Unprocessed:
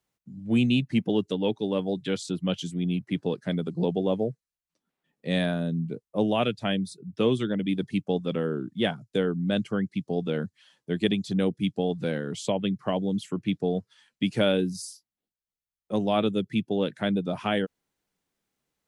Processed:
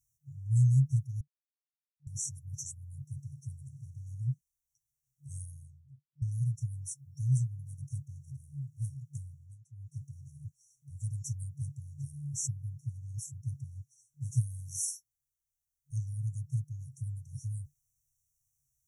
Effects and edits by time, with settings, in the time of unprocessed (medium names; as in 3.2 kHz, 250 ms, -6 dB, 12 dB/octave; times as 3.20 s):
1.21–2.07 s: mute
5.31–6.22 s: studio fade out
9.33–9.95 s: dip -21.5 dB, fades 0.24 s
whole clip: FFT band-reject 150–5500 Hz; trim +6.5 dB